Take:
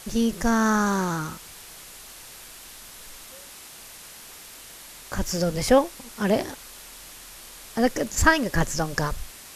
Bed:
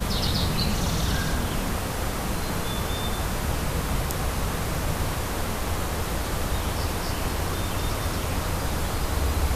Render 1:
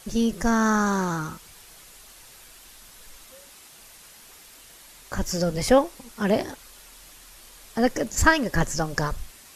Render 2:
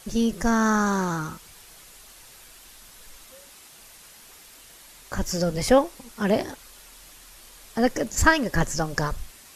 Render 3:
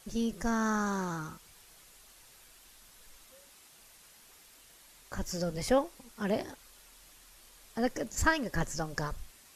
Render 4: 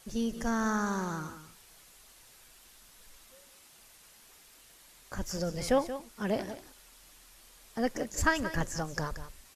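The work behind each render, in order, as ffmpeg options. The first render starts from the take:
-af "afftdn=nr=6:nf=-44"
-af anull
-af "volume=-9dB"
-af "aecho=1:1:179:0.251"

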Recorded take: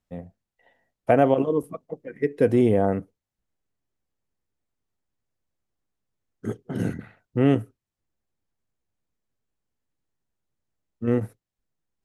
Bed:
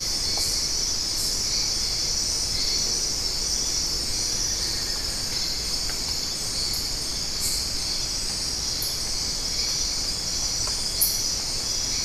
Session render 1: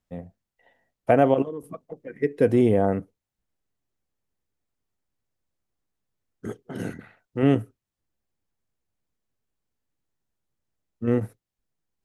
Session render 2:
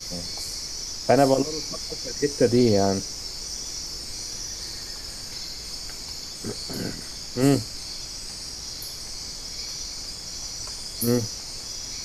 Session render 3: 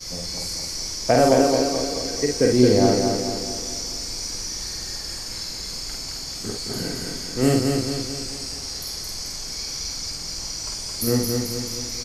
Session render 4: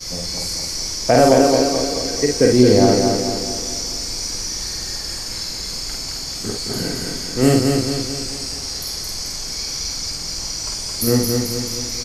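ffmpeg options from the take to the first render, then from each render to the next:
-filter_complex "[0:a]asettb=1/sr,asplit=3[a][b][c];[a]atrim=end=1.424[d];[b]atrim=start=1.42:end=2.15,asetpts=PTS-STARTPTS,afade=t=in:d=0.004:c=qsin,afade=t=out:st=0.726:d=0.004:c=qsin,acompressor=threshold=-30dB:ratio=6:attack=3.2:release=140:knee=1:detection=peak[e];[c]atrim=start=2.146[f];[d][e]acrossfade=d=0.004:c1=hsin:c2=qsin[g];[g][f]acrossfade=d=0.004:c1=qsin:c2=hsin,asettb=1/sr,asplit=3[h][i][j];[h]atrim=end=6.474[k];[i]atrim=start=6.47:end=7.43,asetpts=PTS-STARTPTS,afade=t=in:d=0.004:c=qsin,afade=t=out:st=0.956:d=0.004:c=qsin,equalizer=f=98:w=0.35:g=-8[l];[j]atrim=start=7.426[m];[k][l]acrossfade=d=0.004:c1=hsin:c2=qsin[n];[n][m]acrossfade=d=0.004:c1=qsin:c2=hsin"
-filter_complex "[1:a]volume=-8dB[a];[0:a][a]amix=inputs=2:normalize=0"
-filter_complex "[0:a]asplit=2[a][b];[b]adelay=48,volume=-3dB[c];[a][c]amix=inputs=2:normalize=0,asplit=2[d][e];[e]aecho=0:1:218|436|654|872|1090|1308|1526:0.631|0.322|0.164|0.0837|0.0427|0.0218|0.0111[f];[d][f]amix=inputs=2:normalize=0"
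-af "volume=4.5dB,alimiter=limit=-1dB:level=0:latency=1"

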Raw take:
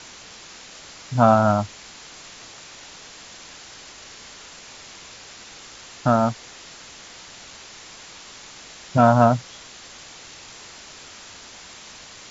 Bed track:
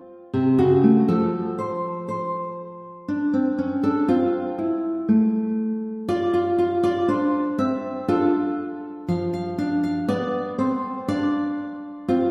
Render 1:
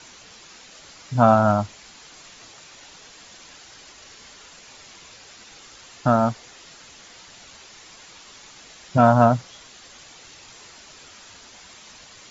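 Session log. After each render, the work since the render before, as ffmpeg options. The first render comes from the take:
-af "afftdn=nr=6:nf=-43"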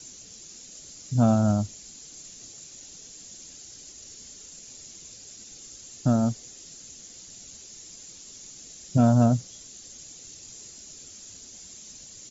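-af "firequalizer=gain_entry='entry(240,0);entry(970,-18);entry(6800,7)':delay=0.05:min_phase=1"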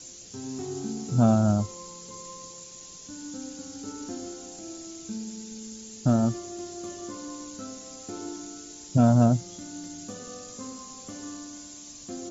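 -filter_complex "[1:a]volume=-18dB[a];[0:a][a]amix=inputs=2:normalize=0"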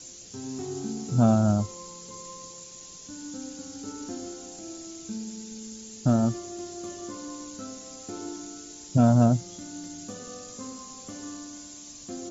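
-af anull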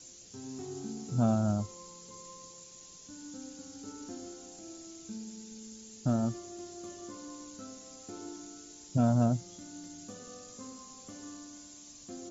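-af "volume=-7dB"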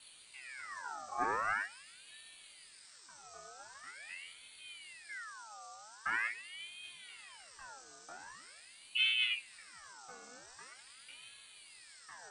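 -af "flanger=delay=17.5:depth=5:speed=0.19,aeval=exprs='val(0)*sin(2*PI*1900*n/s+1900*0.5/0.44*sin(2*PI*0.44*n/s))':c=same"

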